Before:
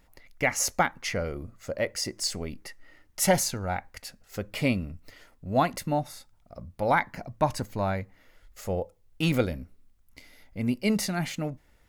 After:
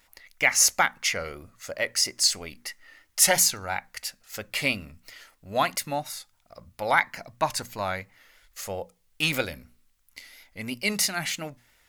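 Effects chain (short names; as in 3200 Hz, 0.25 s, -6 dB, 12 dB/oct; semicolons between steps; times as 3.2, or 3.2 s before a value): vibrato 3 Hz 60 cents; tilt shelf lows -8.5 dB, about 810 Hz; notches 60/120/180/240 Hz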